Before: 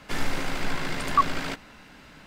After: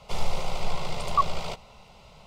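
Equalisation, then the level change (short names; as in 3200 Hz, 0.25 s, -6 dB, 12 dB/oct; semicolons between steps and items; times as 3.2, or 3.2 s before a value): high shelf 7900 Hz -11.5 dB; fixed phaser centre 690 Hz, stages 4; +3.0 dB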